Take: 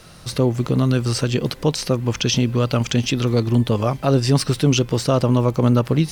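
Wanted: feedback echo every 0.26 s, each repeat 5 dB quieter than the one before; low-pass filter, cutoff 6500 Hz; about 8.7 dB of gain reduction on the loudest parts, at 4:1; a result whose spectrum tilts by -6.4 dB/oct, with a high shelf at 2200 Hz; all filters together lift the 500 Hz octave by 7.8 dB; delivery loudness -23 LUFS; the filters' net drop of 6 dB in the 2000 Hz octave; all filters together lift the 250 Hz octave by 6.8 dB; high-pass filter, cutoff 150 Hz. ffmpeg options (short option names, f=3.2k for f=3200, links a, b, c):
-af "highpass=150,lowpass=6.5k,equalizer=f=250:t=o:g=6.5,equalizer=f=500:t=o:g=8,equalizer=f=2k:t=o:g=-6,highshelf=f=2.2k:g=-4.5,acompressor=threshold=-17dB:ratio=4,aecho=1:1:260|520|780|1040|1300|1560|1820:0.562|0.315|0.176|0.0988|0.0553|0.031|0.0173,volume=-2.5dB"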